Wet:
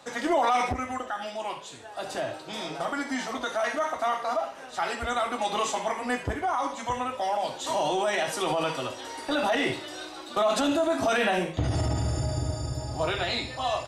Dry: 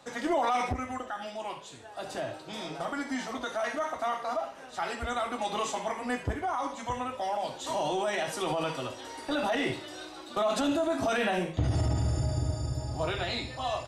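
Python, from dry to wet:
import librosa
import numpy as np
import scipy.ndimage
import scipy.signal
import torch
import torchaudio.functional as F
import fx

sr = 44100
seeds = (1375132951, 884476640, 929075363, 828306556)

y = fx.low_shelf(x, sr, hz=270.0, db=-5.0)
y = F.gain(torch.from_numpy(y), 4.5).numpy()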